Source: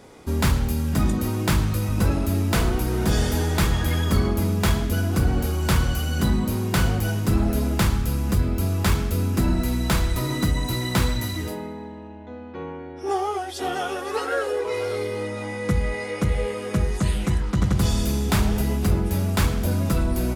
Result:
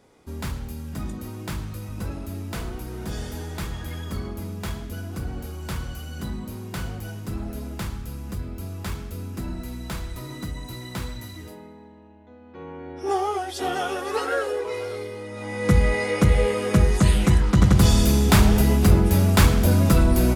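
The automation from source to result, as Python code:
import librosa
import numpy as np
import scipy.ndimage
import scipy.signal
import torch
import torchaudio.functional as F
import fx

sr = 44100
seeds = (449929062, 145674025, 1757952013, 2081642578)

y = fx.gain(x, sr, db=fx.line((12.39, -10.5), (12.91, 0.5), (14.29, 0.5), (15.24, -7.5), (15.74, 5.0)))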